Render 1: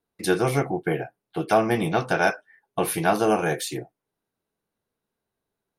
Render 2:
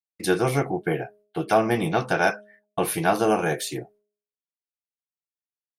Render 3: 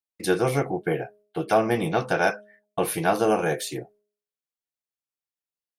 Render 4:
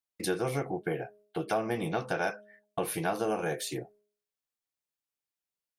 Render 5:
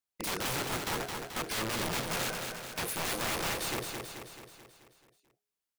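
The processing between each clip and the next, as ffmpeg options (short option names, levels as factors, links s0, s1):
-af "agate=range=0.0224:threshold=0.00355:ratio=3:detection=peak,bandreject=f=207.8:t=h:w=4,bandreject=f=415.6:t=h:w=4,bandreject=f=623.4:t=h:w=4"
-af "equalizer=f=510:w=4.5:g=4.5,volume=0.841"
-af "acompressor=threshold=0.02:ratio=2"
-filter_complex "[0:a]aeval=exprs='(mod(28.2*val(0)+1,2)-1)/28.2':c=same,asplit=2[s0][s1];[s1]aecho=0:1:217|434|651|868|1085|1302|1519:0.562|0.315|0.176|0.0988|0.0553|0.031|0.0173[s2];[s0][s2]amix=inputs=2:normalize=0"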